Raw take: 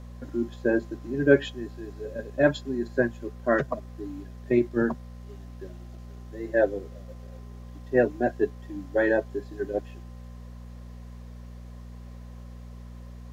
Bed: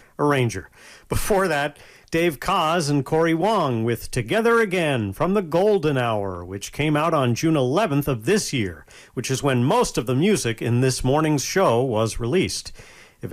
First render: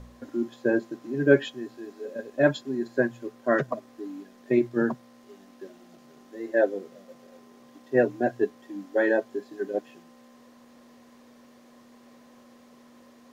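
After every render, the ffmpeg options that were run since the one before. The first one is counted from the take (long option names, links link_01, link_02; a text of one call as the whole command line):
ffmpeg -i in.wav -af "bandreject=frequency=60:width_type=h:width=4,bandreject=frequency=120:width_type=h:width=4,bandreject=frequency=180:width_type=h:width=4" out.wav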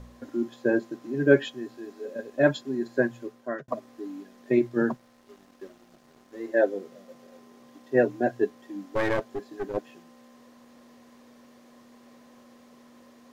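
ffmpeg -i in.wav -filter_complex "[0:a]asettb=1/sr,asplit=3[link_01][link_02][link_03];[link_01]atrim=end=4.924[link_04];[link_02]atrim=start=4.92:end=6.48,asetpts=PTS-STARTPTS,afade=type=in:duration=0.004:curve=qsin,afade=type=out:start_time=1.556:duration=0.004:curve=qsin,aeval=exprs='sgn(val(0))*max(abs(val(0))-0.00133,0)':channel_layout=same[link_05];[link_03]atrim=start=6.476[link_06];[link_04][link_05]acrossfade=duration=0.004:curve1=hsin:curve2=qsin[link_07];[link_07][link_06]acrossfade=duration=0.004:curve1=qsin:curve2=hsin,asplit=3[link_08][link_09][link_10];[link_08]afade=type=out:start_time=8.8:duration=0.02[link_11];[link_09]aeval=exprs='clip(val(0),-1,0.0237)':channel_layout=same,afade=type=in:start_time=8.8:duration=0.02,afade=type=out:start_time=9.76:duration=0.02[link_12];[link_10]afade=type=in:start_time=9.76:duration=0.02[link_13];[link_11][link_12][link_13]amix=inputs=3:normalize=0,asplit=2[link_14][link_15];[link_14]atrim=end=3.68,asetpts=PTS-STARTPTS,afade=type=out:start_time=3.2:duration=0.48[link_16];[link_15]atrim=start=3.68,asetpts=PTS-STARTPTS,afade=type=in:duration=0.004:curve=hsin[link_17];[link_16][link_17]concat=n=2:v=0:a=1" out.wav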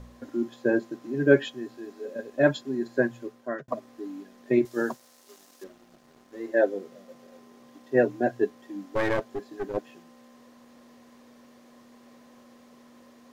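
ffmpeg -i in.wav -filter_complex "[0:a]asettb=1/sr,asplit=3[link_01][link_02][link_03];[link_01]atrim=end=4.654[link_04];[link_02]atrim=start=4.65:end=5.64,asetpts=PTS-STARTPTS,afade=type=in:duration=0.004:curve=qsin,afade=type=out:start_time=0.986:duration=0.004:curve=qsin,bass=frequency=250:gain=-12,treble=frequency=4000:gain=14[link_05];[link_03]atrim=start=5.636[link_06];[link_04][link_05]acrossfade=duration=0.004:curve1=hsin:curve2=qsin[link_07];[link_07][link_06]acrossfade=duration=0.004:curve1=qsin:curve2=hsin" out.wav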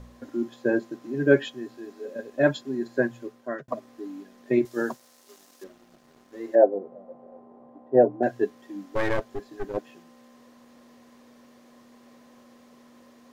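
ffmpeg -i in.wav -filter_complex "[0:a]asettb=1/sr,asplit=3[link_01][link_02][link_03];[link_01]atrim=end=6.554[link_04];[link_02]atrim=start=6.55:end=8.23,asetpts=PTS-STARTPTS,afade=type=in:duration=0.004:curve=qsin,afade=type=out:start_time=1.676:duration=0.004:curve=qsin,lowpass=frequency=760:width_type=q:width=2.5[link_05];[link_03]atrim=start=8.226[link_06];[link_04][link_05]acrossfade=duration=0.004:curve1=hsin:curve2=qsin[link_07];[link_07][link_06]acrossfade=duration=0.004:curve1=qsin:curve2=hsin,asettb=1/sr,asplit=3[link_08][link_09][link_10];[link_08]atrim=end=8.744[link_11];[link_09]atrim=start=8.74:end=9.7,asetpts=PTS-STARTPTS,afade=type=in:duration=0.004:curve=qsin,afade=type=out:start_time=0.956:duration=0.004:curve=qsin,asubboost=boost=7.5:cutoff=120[link_12];[link_10]atrim=start=9.696[link_13];[link_11][link_12]acrossfade=duration=0.004:curve1=hsin:curve2=qsin[link_14];[link_14][link_13]acrossfade=duration=0.004:curve1=qsin:curve2=hsin" out.wav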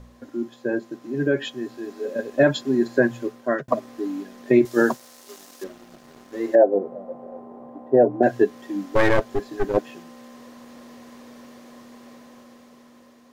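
ffmpeg -i in.wav -af "alimiter=limit=-15dB:level=0:latency=1:release=118,dynaudnorm=framelen=670:gausssize=5:maxgain=9.5dB" out.wav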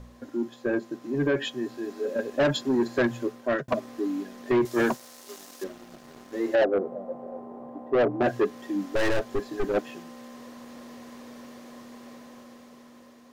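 ffmpeg -i in.wav -af "asoftclip=type=tanh:threshold=-17.5dB" out.wav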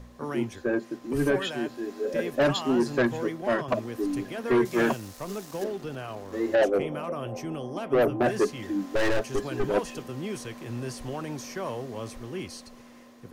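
ffmpeg -i in.wav -i bed.wav -filter_complex "[1:a]volume=-15.5dB[link_01];[0:a][link_01]amix=inputs=2:normalize=0" out.wav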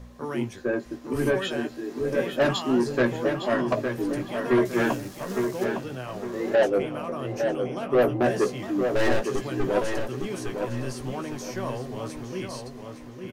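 ffmpeg -i in.wav -filter_complex "[0:a]asplit=2[link_01][link_02];[link_02]adelay=16,volume=-7.5dB[link_03];[link_01][link_03]amix=inputs=2:normalize=0,asplit=2[link_04][link_05];[link_05]adelay=859,lowpass=frequency=3600:poles=1,volume=-6dB,asplit=2[link_06][link_07];[link_07]adelay=859,lowpass=frequency=3600:poles=1,volume=0.35,asplit=2[link_08][link_09];[link_09]adelay=859,lowpass=frequency=3600:poles=1,volume=0.35,asplit=2[link_10][link_11];[link_11]adelay=859,lowpass=frequency=3600:poles=1,volume=0.35[link_12];[link_04][link_06][link_08][link_10][link_12]amix=inputs=5:normalize=0" out.wav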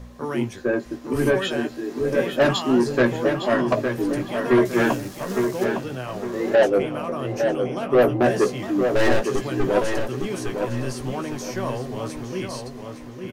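ffmpeg -i in.wav -af "volume=4dB" out.wav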